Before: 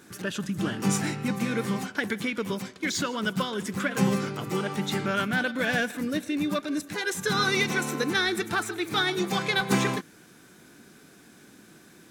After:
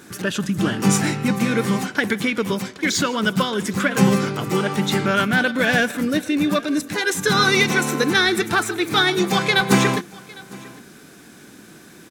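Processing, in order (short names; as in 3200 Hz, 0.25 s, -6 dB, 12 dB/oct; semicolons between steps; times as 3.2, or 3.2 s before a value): echo 0.805 s -22.5 dB; gain +8 dB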